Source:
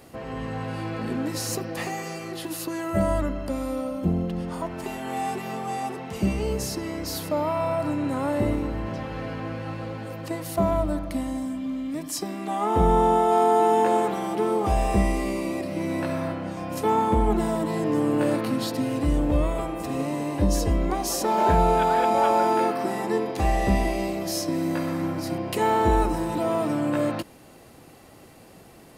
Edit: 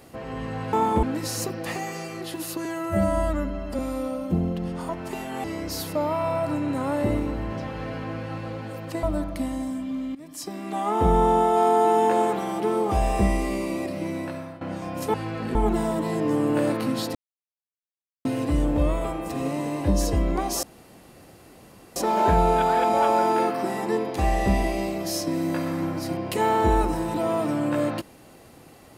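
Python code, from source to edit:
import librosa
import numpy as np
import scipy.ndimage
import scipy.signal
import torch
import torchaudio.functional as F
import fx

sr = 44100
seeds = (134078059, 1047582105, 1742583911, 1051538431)

y = fx.edit(x, sr, fx.swap(start_s=0.73, length_s=0.41, other_s=16.89, other_length_s=0.3),
    fx.stretch_span(start_s=2.76, length_s=0.76, factor=1.5),
    fx.cut(start_s=5.17, length_s=1.63),
    fx.cut(start_s=10.39, length_s=0.39),
    fx.fade_in_from(start_s=11.9, length_s=0.57, floor_db=-16.0),
    fx.fade_out_to(start_s=15.69, length_s=0.67, floor_db=-15.5),
    fx.insert_silence(at_s=18.79, length_s=1.1),
    fx.insert_room_tone(at_s=21.17, length_s=1.33), tone=tone)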